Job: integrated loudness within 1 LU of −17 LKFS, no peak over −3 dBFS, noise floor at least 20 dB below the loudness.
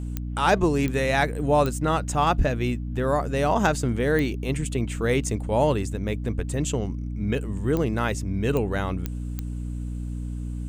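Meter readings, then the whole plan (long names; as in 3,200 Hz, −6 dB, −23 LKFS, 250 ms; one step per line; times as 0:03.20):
number of clicks 8; mains hum 60 Hz; hum harmonics up to 300 Hz; level of the hum −28 dBFS; integrated loudness −25.0 LKFS; sample peak −7.0 dBFS; target loudness −17.0 LKFS
→ click removal
hum removal 60 Hz, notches 5
level +8 dB
brickwall limiter −3 dBFS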